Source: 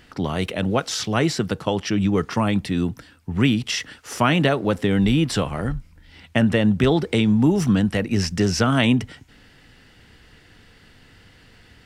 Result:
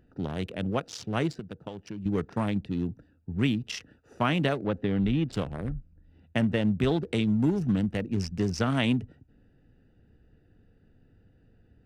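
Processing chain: local Wiener filter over 41 samples; 1.32–2.06 s: compression 4:1, threshold -30 dBFS, peak gain reduction 10.5 dB; 4.64–5.33 s: low-pass 3.4 kHz 12 dB/octave; trim -7 dB

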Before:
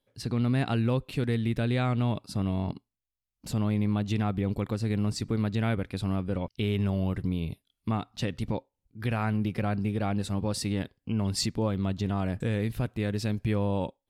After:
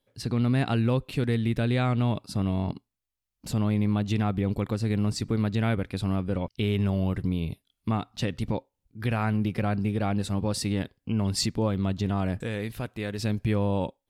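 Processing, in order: 12.41–13.19 s: bass shelf 340 Hz -8 dB; trim +2 dB

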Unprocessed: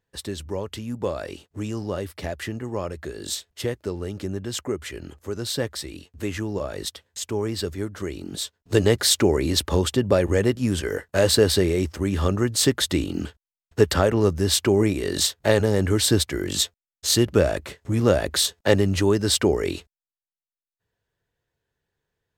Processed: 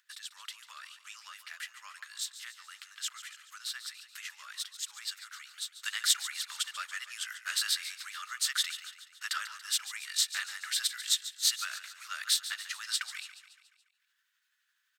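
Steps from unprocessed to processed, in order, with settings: elliptic high-pass 1.3 kHz, stop band 70 dB; expander -56 dBFS; upward compressor, threshold -37 dBFS; granular stretch 0.67×, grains 170 ms; feedback delay 142 ms, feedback 54%, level -13 dB; trim -4 dB

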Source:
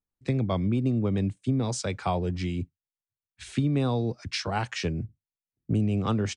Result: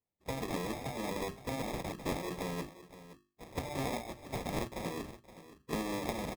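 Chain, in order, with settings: comb filter that takes the minimum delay 2.4 ms; spectral gate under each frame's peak -10 dB weak; high-pass 47 Hz; bass shelf 180 Hz +6.5 dB; hum notches 50/100/150/200/250/300/350/400 Hz; sample-and-hold 30×; delay 520 ms -15 dB

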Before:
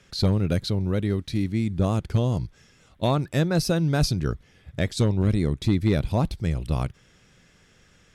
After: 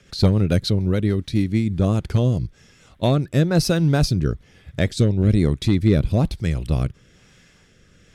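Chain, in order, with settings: 3.48–4.17 s: hysteresis with a dead band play -44.5 dBFS; rotary cabinet horn 7 Hz, later 1.1 Hz, at 1.30 s; trim +6 dB

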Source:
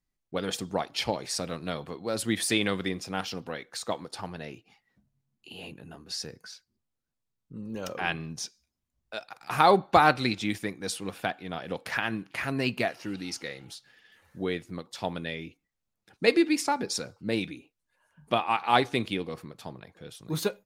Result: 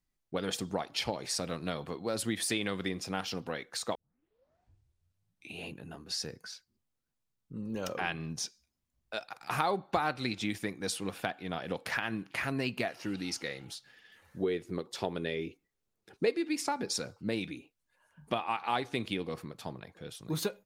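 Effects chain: 14.43–16.33 s: peaking EQ 400 Hz +11 dB 0.54 oct; compression 3:1, threshold -30 dBFS, peak gain reduction 15 dB; 3.95 s: tape start 1.73 s

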